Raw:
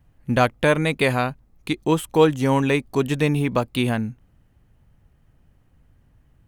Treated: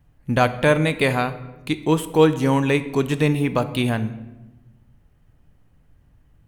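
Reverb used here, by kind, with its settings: simulated room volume 510 m³, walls mixed, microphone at 0.39 m

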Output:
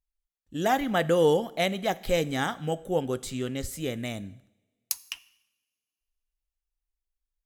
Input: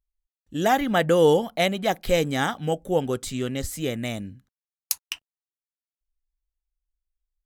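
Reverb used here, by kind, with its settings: two-slope reverb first 0.84 s, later 2.7 s, from -26 dB, DRR 16.5 dB; trim -4 dB

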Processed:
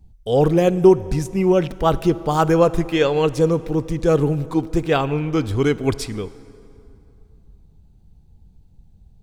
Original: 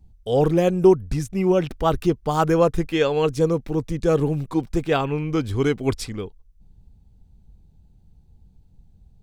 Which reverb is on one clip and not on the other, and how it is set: plate-style reverb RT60 2.8 s, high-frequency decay 0.65×, DRR 16 dB; trim +2.5 dB

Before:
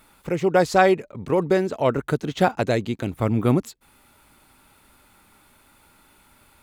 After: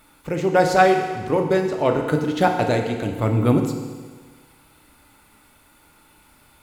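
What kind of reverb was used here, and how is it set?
FDN reverb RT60 1.5 s, low-frequency decay 0.95×, high-frequency decay 1×, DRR 3 dB

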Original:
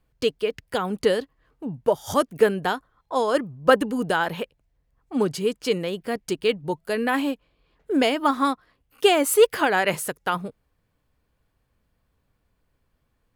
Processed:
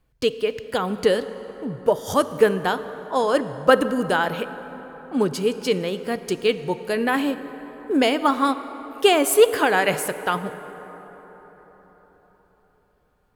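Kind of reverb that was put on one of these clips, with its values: plate-style reverb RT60 4.7 s, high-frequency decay 0.45×, DRR 11.5 dB; trim +1.5 dB

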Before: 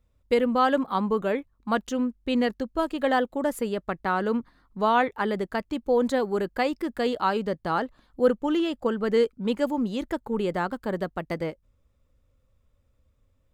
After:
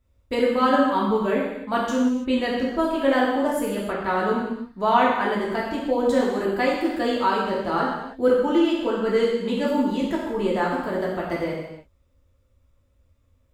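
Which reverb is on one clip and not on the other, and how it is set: gated-style reverb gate 360 ms falling, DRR -5.5 dB; trim -2.5 dB

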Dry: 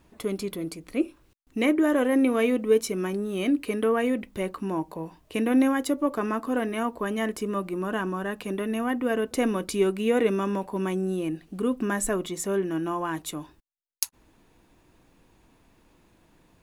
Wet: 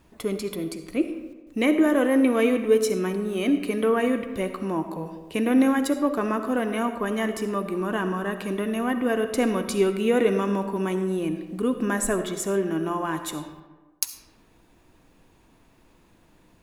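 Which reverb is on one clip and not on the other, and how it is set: algorithmic reverb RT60 1.3 s, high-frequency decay 0.55×, pre-delay 25 ms, DRR 8.5 dB; trim +1.5 dB

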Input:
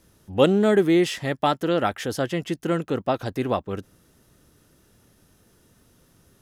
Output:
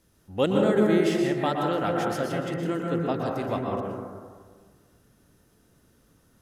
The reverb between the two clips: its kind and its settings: plate-style reverb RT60 1.7 s, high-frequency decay 0.25×, pre-delay 105 ms, DRR -1 dB; trim -6.5 dB

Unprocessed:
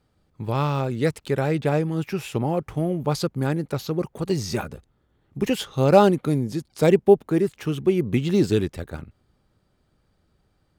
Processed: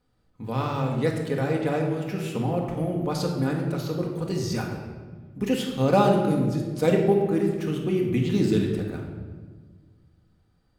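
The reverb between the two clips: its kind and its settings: simulated room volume 1300 m³, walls mixed, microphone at 1.9 m; trim -5.5 dB

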